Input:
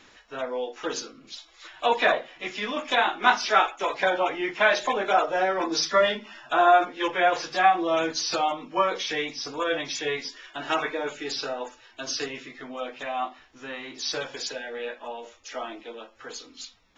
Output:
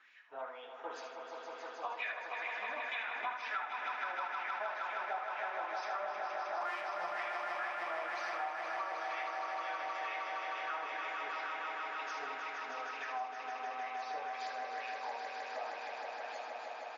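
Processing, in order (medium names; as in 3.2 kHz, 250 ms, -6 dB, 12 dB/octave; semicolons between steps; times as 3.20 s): 6.61–7.23 s: cycle switcher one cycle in 2, inverted; wah-wah 2.1 Hz 770–2400 Hz, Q 3.8; echo with a slow build-up 156 ms, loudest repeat 5, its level -7.5 dB; compression 6:1, threshold -35 dBFS, peak gain reduction 17 dB; delay 76 ms -7.5 dB; trim -2 dB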